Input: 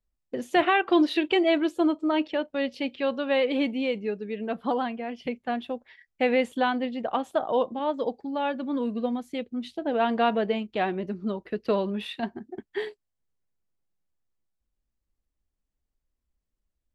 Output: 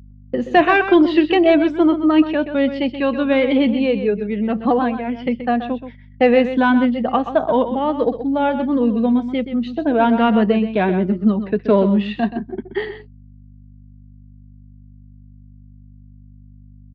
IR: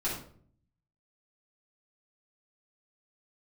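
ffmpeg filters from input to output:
-af "afftfilt=real='re*pow(10,8/40*sin(2*PI*(1.6*log(max(b,1)*sr/1024/100)/log(2)-(-1.2)*(pts-256)/sr)))':imag='im*pow(10,8/40*sin(2*PI*(1.6*log(max(b,1)*sr/1024/100)/log(2)-(-1.2)*(pts-256)/sr)))':win_size=1024:overlap=0.75,lowpass=f=6200:w=0.5412,lowpass=f=6200:w=1.3066,agate=range=0.0224:threshold=0.00631:ratio=3:detection=peak,highpass=f=150:w=0.5412,highpass=f=150:w=1.3066,bass=f=250:g=10,treble=f=4000:g=-11,acontrast=28,aeval=exprs='val(0)+0.00708*(sin(2*PI*50*n/s)+sin(2*PI*2*50*n/s)/2+sin(2*PI*3*50*n/s)/3+sin(2*PI*4*50*n/s)/4+sin(2*PI*5*50*n/s)/5)':c=same,aecho=1:1:128:0.299,volume=1.26"

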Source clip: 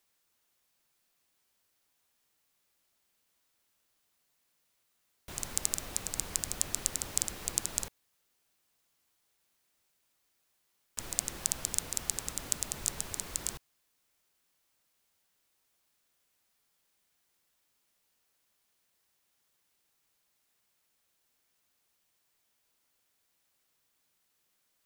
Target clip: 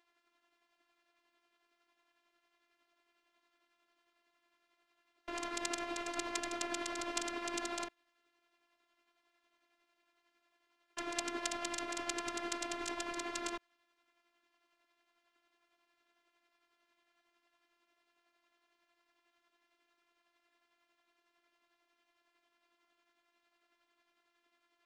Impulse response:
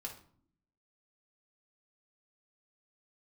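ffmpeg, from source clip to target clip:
-af "tremolo=f=11:d=0.45,highpass=180,lowpass=2500,afftfilt=real='hypot(re,im)*cos(PI*b)':imag='0':win_size=512:overlap=0.75,volume=4.47"

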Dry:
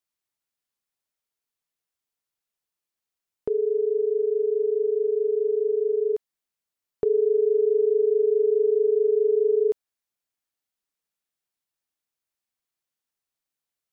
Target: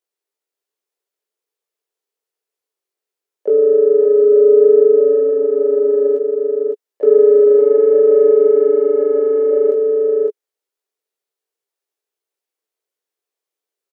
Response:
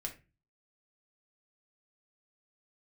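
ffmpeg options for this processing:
-filter_complex "[0:a]asoftclip=type=tanh:threshold=0.158,asplit=3[s0][s1][s2];[s1]asetrate=29433,aresample=44100,atempo=1.49831,volume=0.316[s3];[s2]asetrate=58866,aresample=44100,atempo=0.749154,volume=0.282[s4];[s0][s3][s4]amix=inputs=3:normalize=0,flanger=delay=17.5:depth=3.2:speed=0.17,highpass=f=420:t=q:w=5,asplit=2[s5][s6];[s6]aecho=0:1:558:0.531[s7];[s5][s7]amix=inputs=2:normalize=0,volume=1.33"

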